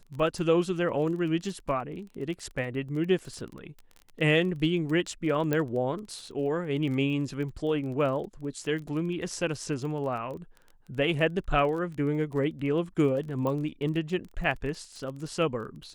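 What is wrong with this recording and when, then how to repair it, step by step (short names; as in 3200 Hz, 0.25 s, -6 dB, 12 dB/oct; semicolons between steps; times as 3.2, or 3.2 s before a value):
crackle 23/s -36 dBFS
5.53 pop -14 dBFS
13.47 pop -20 dBFS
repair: de-click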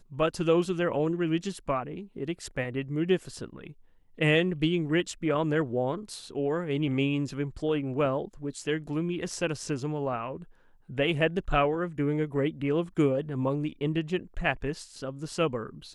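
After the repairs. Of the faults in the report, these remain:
none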